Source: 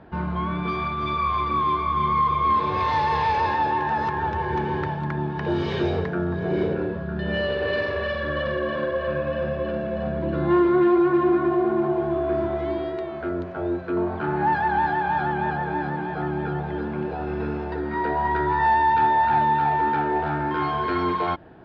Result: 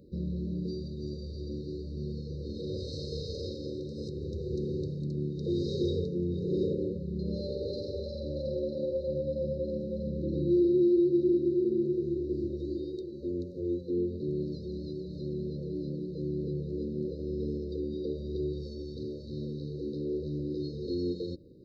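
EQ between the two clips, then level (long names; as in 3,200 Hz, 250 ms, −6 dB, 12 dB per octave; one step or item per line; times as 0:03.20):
linear-phase brick-wall band-stop 580–3,700 Hz
high-shelf EQ 3,600 Hz +8.5 dB
−5.5 dB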